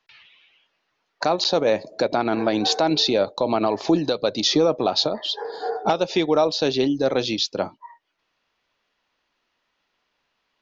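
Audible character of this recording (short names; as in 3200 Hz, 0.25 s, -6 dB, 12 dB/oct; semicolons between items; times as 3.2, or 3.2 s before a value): noise floor -74 dBFS; spectral tilt -3.0 dB/oct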